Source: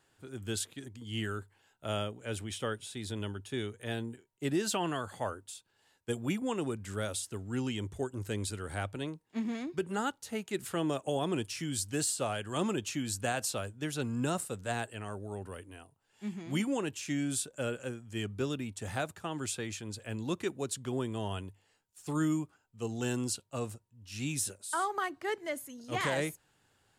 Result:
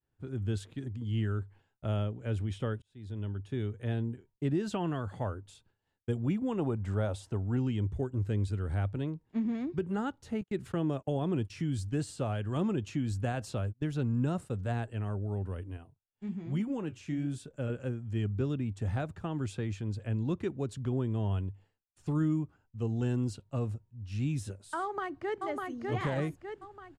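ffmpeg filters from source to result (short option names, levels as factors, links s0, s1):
-filter_complex "[0:a]asettb=1/sr,asplit=3[s0][s1][s2];[s0]atrim=end=6.594[s3];[s1]atrim=start=6.59:end=7.57,asetpts=PTS-STARTPTS,afade=t=in:d=0.004:c=qsin,afade=t=out:st=0.976:d=0.004:c=qsin,equalizer=f=790:w=1.2:g=10[s4];[s2]atrim=start=7.566[s5];[s3][s4]acrossfade=d=0.004:c1=hsin:c2=qsin[s6];[s6][s5]acrossfade=d=0.004:c1=qsin:c2=hsin,asettb=1/sr,asplit=3[s7][s8][s9];[s7]atrim=end=10.414[s10];[s8]atrim=start=10.41:end=14.54,asetpts=PTS-STARTPTS,afade=t=in:d=0.004:c=qsin,afade=t=out:st=4.126:d=0.004:c=qsin,agate=range=0.0316:threshold=0.00447:ratio=16:release=100:detection=peak[s11];[s9]atrim=start=14.536[s12];[s10][s11]acrossfade=d=0.004:c1=hsin:c2=qsin[s13];[s13][s12]acrossfade=d=0.004:c1=qsin:c2=hsin,asettb=1/sr,asplit=3[s14][s15][s16];[s14]atrim=end=15.774[s17];[s15]atrim=start=15.77:end=17.7,asetpts=PTS-STARTPTS,afade=t=in:d=0.004:c=qsin,afade=t=out:st=1.926:d=0.004:c=qsin,flanger=delay=4.7:depth=7.9:regen=-58:speed=1.2:shape=sinusoidal[s18];[s16]atrim=start=17.696[s19];[s17][s18]acrossfade=d=0.004:c1=hsin:c2=qsin[s20];[s20][s19]acrossfade=d=0.004:c1=qsin:c2=hsin,asplit=2[s21][s22];[s22]afade=t=in:st=24.81:d=0.01,afade=t=out:st=25.44:d=0.01,aecho=0:1:600|1200|1800|2400|3000|3600:0.707946|0.318576|0.143359|0.0645116|0.0290302|0.0130636[s23];[s21][s23]amix=inputs=2:normalize=0,asplit=2[s24][s25];[s24]atrim=end=2.82,asetpts=PTS-STARTPTS,afade=t=out:st=2.816:d=0.004:c=hsin[s26];[s25]atrim=start=2.82,asetpts=PTS-STARTPTS,afade=t=in:d=1[s27];[s26][s27]concat=n=2:v=0:a=1,agate=range=0.0224:threshold=0.00112:ratio=3:detection=peak,aemphasis=mode=reproduction:type=riaa,acompressor=threshold=0.0178:ratio=1.5"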